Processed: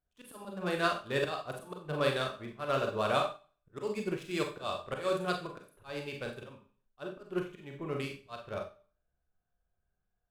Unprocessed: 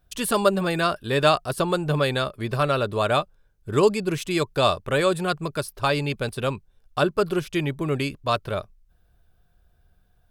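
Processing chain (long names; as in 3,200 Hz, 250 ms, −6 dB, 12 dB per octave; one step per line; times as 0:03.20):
adaptive Wiener filter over 9 samples
low-shelf EQ 230 Hz −6 dB
volume swells 188 ms
four-comb reverb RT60 0.47 s, combs from 30 ms, DRR 0.5 dB
expander for the loud parts 1.5 to 1, over −41 dBFS
level −7 dB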